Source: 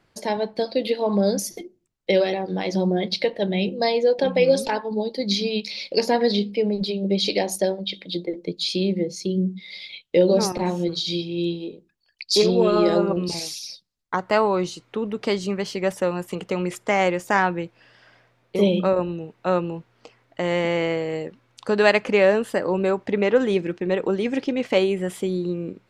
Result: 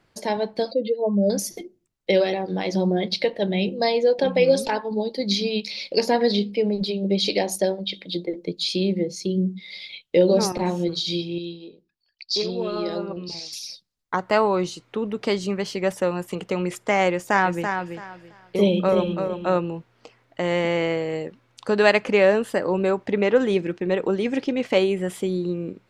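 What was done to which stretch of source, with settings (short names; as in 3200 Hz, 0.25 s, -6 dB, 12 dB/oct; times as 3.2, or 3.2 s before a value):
0.71–1.3 spectral contrast raised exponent 2
11.38–13.53 ladder low-pass 5800 Hz, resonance 45%
17.12–19.58 feedback echo 0.333 s, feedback 22%, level -6.5 dB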